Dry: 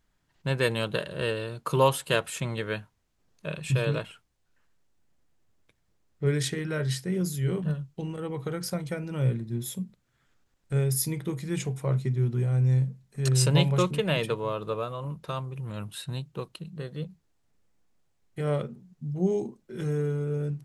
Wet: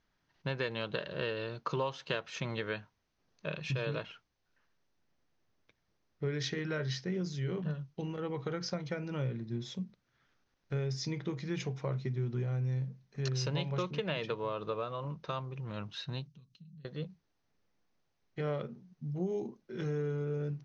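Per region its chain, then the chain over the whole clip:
16.27–16.85 s: comb 7.2 ms, depth 63% + compression, threshold -46 dBFS + FFT filter 220 Hz 0 dB, 330 Hz -19 dB, 950 Hz -24 dB, 7.2 kHz 0 dB
whole clip: Chebyshev low-pass 6.2 kHz, order 6; bass shelf 120 Hz -7.5 dB; compression 5:1, threshold -30 dBFS; trim -1 dB

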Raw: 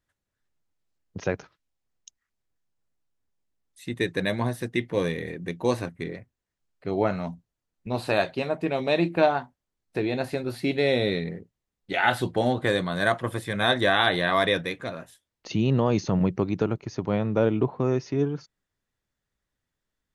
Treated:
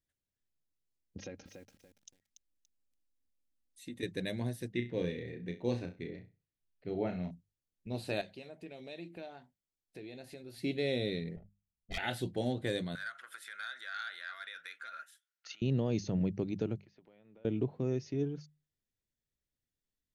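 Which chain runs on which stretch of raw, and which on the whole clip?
1.17–4.03 s: comb 3.7 ms, depth 74% + compression, threshold -30 dBFS + bit-crushed delay 286 ms, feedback 35%, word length 9-bit, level -6.5 dB
4.72–7.31 s: low-pass 4 kHz + flutter echo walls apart 5.7 m, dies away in 0.28 s
8.21–10.58 s: bass shelf 330 Hz -7 dB + compression 2:1, threshold -39 dBFS
11.36–11.98 s: comb filter that takes the minimum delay 0.91 ms + level-controlled noise filter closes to 330 Hz, open at -34 dBFS + comb 1.6 ms, depth 76%
12.95–15.62 s: compression 12:1, threshold -30 dBFS + resonant high-pass 1.4 kHz, resonance Q 16 + transformer saturation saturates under 1 kHz
16.82–17.45 s: high-pass 1.4 kHz 6 dB/octave + compression 4:1, threshold -47 dBFS + distance through air 320 m
whole clip: peaking EQ 1.1 kHz -15 dB 1.2 oct; hum notches 50/100/150/200 Hz; trim -7.5 dB

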